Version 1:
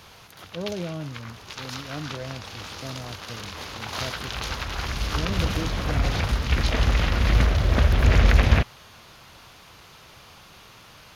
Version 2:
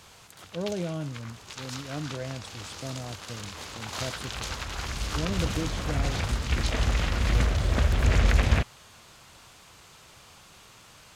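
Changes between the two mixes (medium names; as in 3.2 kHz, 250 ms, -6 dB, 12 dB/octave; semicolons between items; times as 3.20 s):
background -4.5 dB; master: add peaking EQ 7.9 kHz +14.5 dB 0.38 oct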